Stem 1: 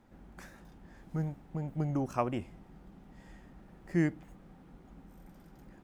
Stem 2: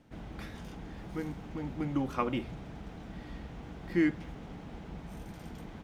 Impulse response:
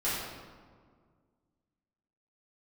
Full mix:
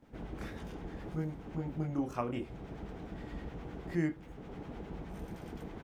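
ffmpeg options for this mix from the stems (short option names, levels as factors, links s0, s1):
-filter_complex "[0:a]volume=0.562,asplit=2[s0][s1];[1:a]firequalizer=gain_entry='entry(230,0);entry(400,6);entry(610,1);entry(4100,-4)':delay=0.05:min_phase=1,acrossover=split=890[s2][s3];[s2]aeval=exprs='val(0)*(1-0.5/2+0.5/2*cos(2*PI*9.6*n/s))':c=same[s4];[s3]aeval=exprs='val(0)*(1-0.5/2-0.5/2*cos(2*PI*9.6*n/s))':c=same[s5];[s4][s5]amix=inputs=2:normalize=0,adelay=22,volume=1.26[s6];[s1]apad=whole_len=262602[s7];[s6][s7]sidechaincompress=threshold=0.00708:ratio=8:attack=48:release=507[s8];[s0][s8]amix=inputs=2:normalize=0"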